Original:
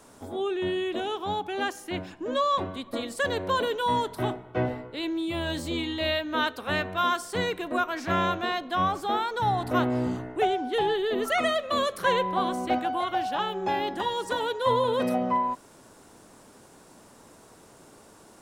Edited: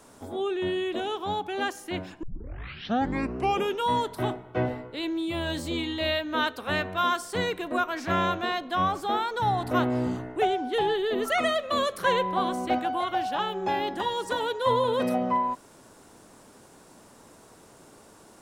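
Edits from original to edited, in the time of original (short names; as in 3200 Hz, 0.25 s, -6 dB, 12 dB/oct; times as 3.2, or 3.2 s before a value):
2.23 tape start 1.66 s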